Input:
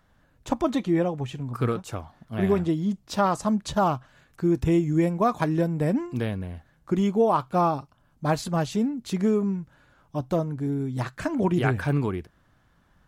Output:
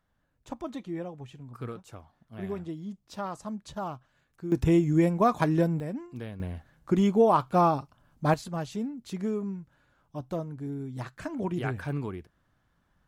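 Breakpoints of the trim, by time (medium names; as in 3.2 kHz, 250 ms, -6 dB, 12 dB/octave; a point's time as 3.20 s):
-12.5 dB
from 4.52 s -0.5 dB
from 5.80 s -11 dB
from 6.40 s 0 dB
from 8.34 s -8 dB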